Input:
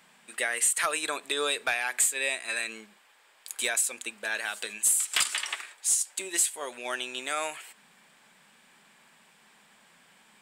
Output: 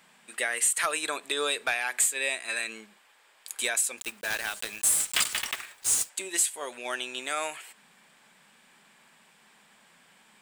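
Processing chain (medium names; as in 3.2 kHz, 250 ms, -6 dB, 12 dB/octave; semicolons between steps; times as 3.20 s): 3.98–6.10 s: block-companded coder 3-bit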